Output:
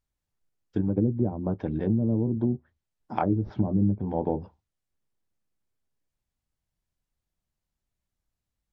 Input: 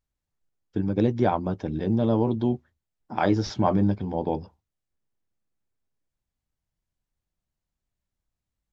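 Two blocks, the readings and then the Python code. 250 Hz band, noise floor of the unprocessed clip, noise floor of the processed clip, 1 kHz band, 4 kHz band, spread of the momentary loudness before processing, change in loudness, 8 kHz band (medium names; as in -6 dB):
-1.0 dB, under -85 dBFS, under -85 dBFS, -6.0 dB, under -15 dB, 9 LU, -2.0 dB, no reading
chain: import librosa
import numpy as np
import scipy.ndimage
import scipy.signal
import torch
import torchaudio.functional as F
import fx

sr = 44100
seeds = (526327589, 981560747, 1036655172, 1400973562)

y = fx.env_lowpass_down(x, sr, base_hz=300.0, full_db=-19.0)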